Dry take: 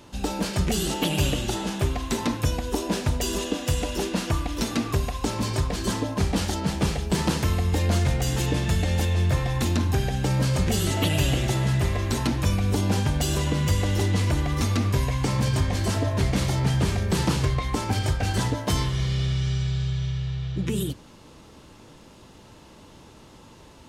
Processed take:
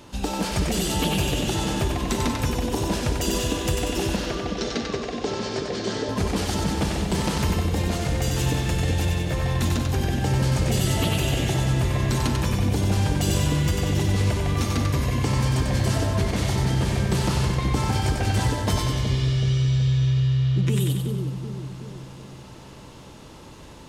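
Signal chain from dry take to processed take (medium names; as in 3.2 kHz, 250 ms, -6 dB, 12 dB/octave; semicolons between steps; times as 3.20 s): compression 2.5:1, threshold -25 dBFS, peak gain reduction 6 dB; 4.16–6.09 s: cabinet simulation 210–6000 Hz, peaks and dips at 290 Hz -6 dB, 420 Hz +7 dB, 1 kHz -8 dB, 2.5 kHz -4 dB; on a send: two-band feedback delay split 580 Hz, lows 374 ms, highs 94 ms, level -3.5 dB; on the sum: trim +2.5 dB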